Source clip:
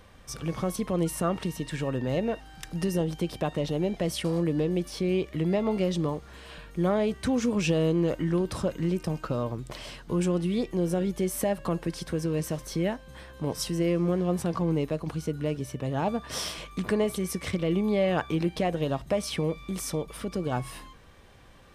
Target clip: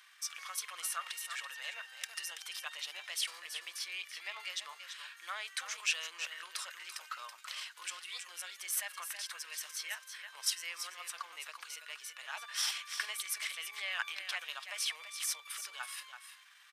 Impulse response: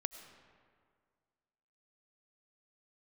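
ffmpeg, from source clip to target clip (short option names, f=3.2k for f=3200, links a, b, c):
-af "highpass=f=1.4k:w=0.5412,highpass=f=1.4k:w=1.3066,aecho=1:1:433:0.355,atempo=1.3,volume=1dB"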